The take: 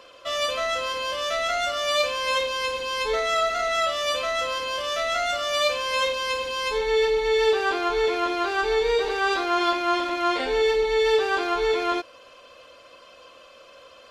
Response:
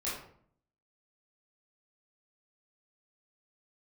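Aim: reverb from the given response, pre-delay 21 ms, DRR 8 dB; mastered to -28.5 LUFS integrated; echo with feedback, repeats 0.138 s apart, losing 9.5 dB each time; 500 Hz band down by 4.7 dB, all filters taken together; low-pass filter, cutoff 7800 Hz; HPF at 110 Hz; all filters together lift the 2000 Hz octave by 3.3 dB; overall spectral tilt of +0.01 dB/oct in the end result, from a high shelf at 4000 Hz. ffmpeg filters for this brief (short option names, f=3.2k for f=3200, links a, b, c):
-filter_complex "[0:a]highpass=110,lowpass=7.8k,equalizer=f=500:t=o:g=-6,equalizer=f=2k:t=o:g=3.5,highshelf=f=4k:g=4,aecho=1:1:138|276|414|552:0.335|0.111|0.0365|0.012,asplit=2[a][b];[1:a]atrim=start_sample=2205,adelay=21[c];[b][c]afir=irnorm=-1:irlink=0,volume=-12.5dB[d];[a][d]amix=inputs=2:normalize=0,volume=-6.5dB"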